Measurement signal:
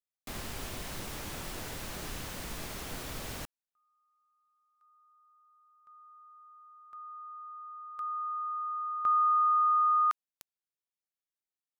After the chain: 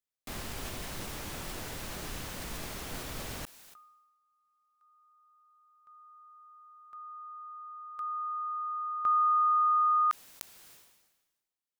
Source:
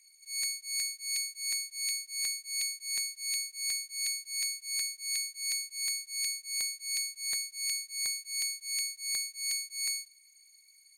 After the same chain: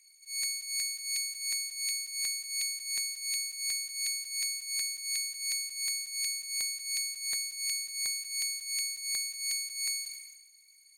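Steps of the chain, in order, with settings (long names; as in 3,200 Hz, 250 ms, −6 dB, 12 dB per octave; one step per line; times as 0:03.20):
level that may fall only so fast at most 47 dB per second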